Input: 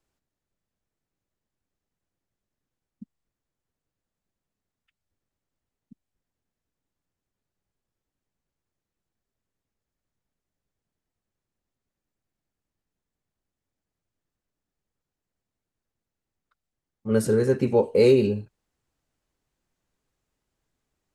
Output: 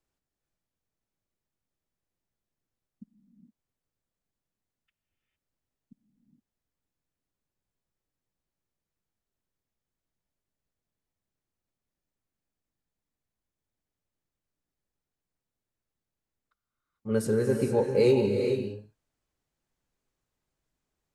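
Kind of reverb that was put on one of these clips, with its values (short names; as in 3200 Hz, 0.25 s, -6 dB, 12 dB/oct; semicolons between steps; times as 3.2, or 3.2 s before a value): non-linear reverb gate 0.48 s rising, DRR 4 dB; gain -5 dB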